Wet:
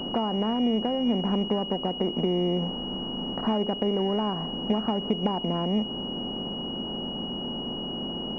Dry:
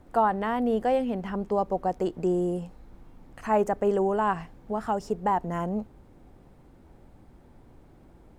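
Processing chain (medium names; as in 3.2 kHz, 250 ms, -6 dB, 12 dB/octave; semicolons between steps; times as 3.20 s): spectral levelling over time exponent 0.6; compression 6:1, threshold -28 dBFS, peak gain reduction 11 dB; peaking EQ 220 Hz +10.5 dB 1.3 oct; class-D stage that switches slowly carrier 2.9 kHz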